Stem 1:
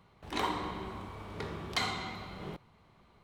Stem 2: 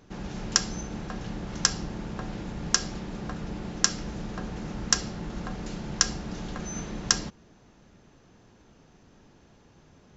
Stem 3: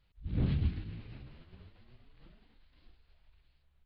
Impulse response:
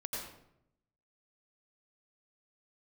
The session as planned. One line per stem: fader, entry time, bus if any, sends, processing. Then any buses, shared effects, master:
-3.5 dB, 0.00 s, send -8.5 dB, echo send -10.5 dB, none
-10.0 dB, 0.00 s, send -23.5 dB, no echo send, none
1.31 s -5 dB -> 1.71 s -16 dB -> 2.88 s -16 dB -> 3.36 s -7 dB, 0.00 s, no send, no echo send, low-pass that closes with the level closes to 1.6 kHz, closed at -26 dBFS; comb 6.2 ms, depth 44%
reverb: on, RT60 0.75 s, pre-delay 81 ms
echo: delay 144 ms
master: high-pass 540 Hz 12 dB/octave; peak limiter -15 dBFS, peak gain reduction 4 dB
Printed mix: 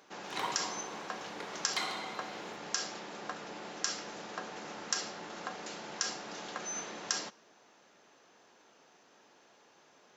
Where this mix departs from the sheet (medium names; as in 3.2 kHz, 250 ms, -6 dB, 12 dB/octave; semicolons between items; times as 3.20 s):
stem 2 -10.0 dB -> +0.5 dB; reverb return -7.5 dB